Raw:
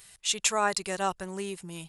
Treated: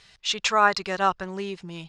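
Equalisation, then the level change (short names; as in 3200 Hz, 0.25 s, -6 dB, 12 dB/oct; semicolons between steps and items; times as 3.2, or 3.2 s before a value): resonant high shelf 7100 Hz -11 dB, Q 1.5; dynamic EQ 1300 Hz, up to +7 dB, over -41 dBFS, Q 1.4; air absorption 72 m; +3.5 dB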